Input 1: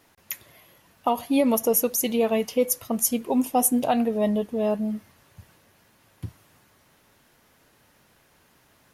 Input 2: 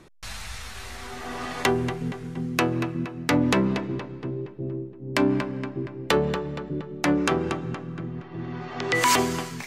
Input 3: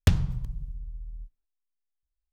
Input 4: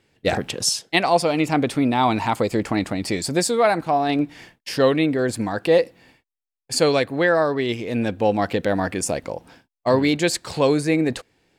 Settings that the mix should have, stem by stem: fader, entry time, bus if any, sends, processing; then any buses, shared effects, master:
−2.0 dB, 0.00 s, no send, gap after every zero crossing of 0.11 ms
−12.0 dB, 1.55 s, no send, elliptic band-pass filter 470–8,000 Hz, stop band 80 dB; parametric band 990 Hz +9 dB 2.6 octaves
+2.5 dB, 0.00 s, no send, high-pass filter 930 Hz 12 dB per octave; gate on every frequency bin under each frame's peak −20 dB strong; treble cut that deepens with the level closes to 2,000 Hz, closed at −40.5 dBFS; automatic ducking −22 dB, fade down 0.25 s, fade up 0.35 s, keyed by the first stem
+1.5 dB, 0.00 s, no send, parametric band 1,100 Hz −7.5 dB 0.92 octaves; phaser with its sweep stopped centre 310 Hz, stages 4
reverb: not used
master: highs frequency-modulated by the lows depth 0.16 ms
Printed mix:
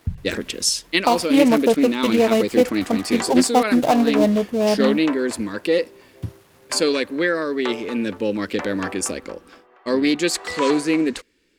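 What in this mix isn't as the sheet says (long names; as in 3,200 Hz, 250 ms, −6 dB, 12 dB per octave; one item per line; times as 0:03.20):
stem 1 −2.0 dB → +5.5 dB
stem 3: missing high-pass filter 930 Hz 12 dB per octave
stem 4: missing parametric band 1,100 Hz −7.5 dB 0.92 octaves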